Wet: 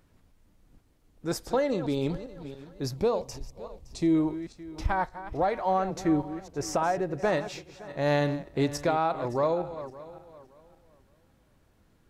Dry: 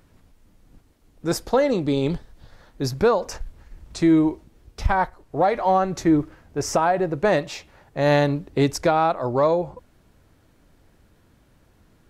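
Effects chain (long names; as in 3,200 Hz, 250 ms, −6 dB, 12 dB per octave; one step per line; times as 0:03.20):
feedback delay that plays each chunk backwards 283 ms, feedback 49%, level −13 dB
0:02.96–0:04.15: parametric band 1,500 Hz −15 dB 0.56 octaves
level −7 dB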